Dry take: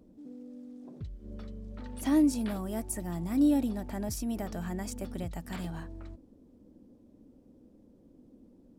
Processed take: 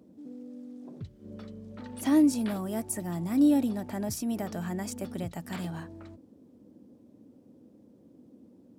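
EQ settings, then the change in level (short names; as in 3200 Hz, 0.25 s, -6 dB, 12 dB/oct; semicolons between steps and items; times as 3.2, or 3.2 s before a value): HPF 92 Hz 24 dB/oct; +2.5 dB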